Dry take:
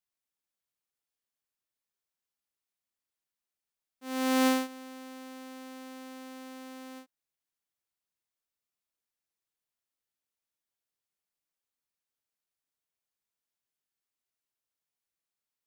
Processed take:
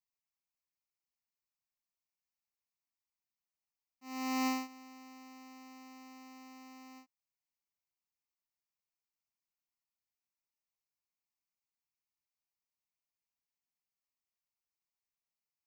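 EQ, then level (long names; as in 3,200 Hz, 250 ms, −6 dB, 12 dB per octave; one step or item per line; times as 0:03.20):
phaser with its sweep stopped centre 2,300 Hz, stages 8
−4.0 dB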